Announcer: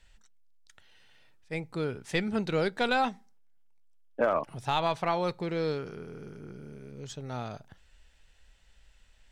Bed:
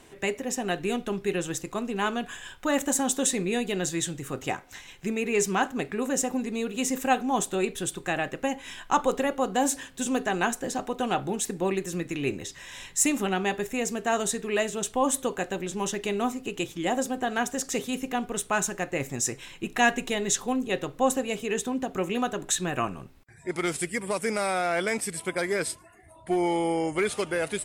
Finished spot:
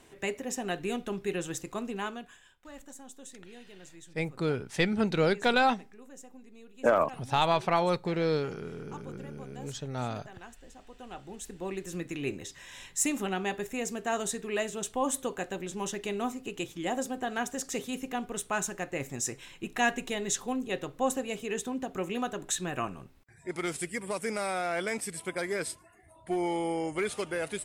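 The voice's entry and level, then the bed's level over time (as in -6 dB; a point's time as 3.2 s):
2.65 s, +2.5 dB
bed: 1.9 s -4.5 dB
2.67 s -23 dB
10.73 s -23 dB
12 s -5 dB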